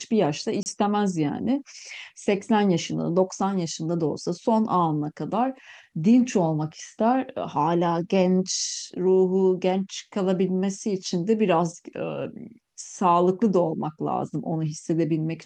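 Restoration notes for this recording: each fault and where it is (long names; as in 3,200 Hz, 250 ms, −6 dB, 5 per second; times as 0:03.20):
0:00.63–0:00.66: drop-out 29 ms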